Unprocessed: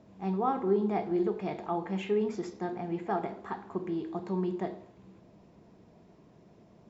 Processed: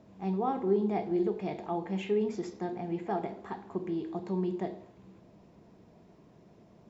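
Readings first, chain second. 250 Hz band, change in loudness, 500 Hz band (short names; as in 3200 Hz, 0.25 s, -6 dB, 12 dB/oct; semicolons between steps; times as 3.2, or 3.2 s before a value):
0.0 dB, -0.5 dB, -0.5 dB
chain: dynamic EQ 1300 Hz, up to -7 dB, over -51 dBFS, Q 1.7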